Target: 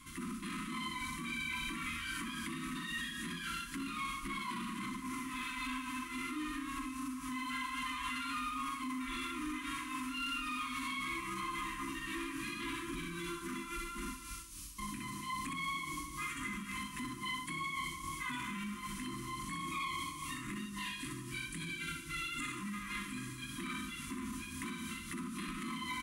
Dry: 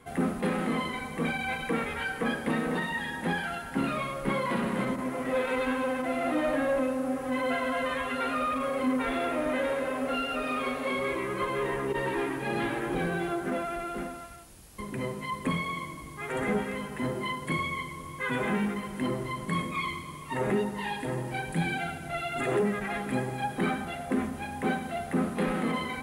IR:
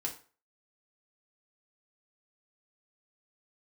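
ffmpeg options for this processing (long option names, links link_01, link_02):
-filter_complex "[0:a]equalizer=frequency=400:width_type=o:width=0.67:gain=-9,equalizer=frequency=1600:width_type=o:width=0.67:gain=-11,equalizer=frequency=6300:width_type=o:width=0.67:gain=4,asplit=2[link_01][link_02];[1:a]atrim=start_sample=2205[link_03];[link_02][link_03]afir=irnorm=-1:irlink=0,volume=-7.5dB[link_04];[link_01][link_04]amix=inputs=2:normalize=0,tremolo=f=3.7:d=0.64,aecho=1:1:21|63:0.473|0.631,acompressor=threshold=-37dB:ratio=2,afftfilt=real='re*(1-between(b*sr/4096,370,970))':imag='im*(1-between(b*sr/4096,370,970))':win_size=4096:overlap=0.75,alimiter=level_in=8.5dB:limit=-24dB:level=0:latency=1:release=13,volume=-8.5dB,equalizer=frequency=120:width=0.74:gain=-11,volume=3dB"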